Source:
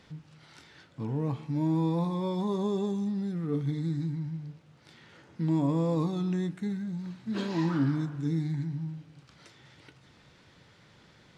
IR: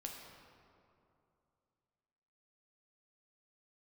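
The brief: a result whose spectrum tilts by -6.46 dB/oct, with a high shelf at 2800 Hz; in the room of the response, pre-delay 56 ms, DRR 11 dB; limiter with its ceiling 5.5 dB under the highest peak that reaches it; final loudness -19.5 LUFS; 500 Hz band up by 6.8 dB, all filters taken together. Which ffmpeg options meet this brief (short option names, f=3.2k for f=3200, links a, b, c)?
-filter_complex "[0:a]equalizer=f=500:t=o:g=8.5,highshelf=f=2.8k:g=7.5,alimiter=limit=-19.5dB:level=0:latency=1,asplit=2[a][b];[1:a]atrim=start_sample=2205,adelay=56[c];[b][c]afir=irnorm=-1:irlink=0,volume=-8.5dB[d];[a][d]amix=inputs=2:normalize=0,volume=10dB"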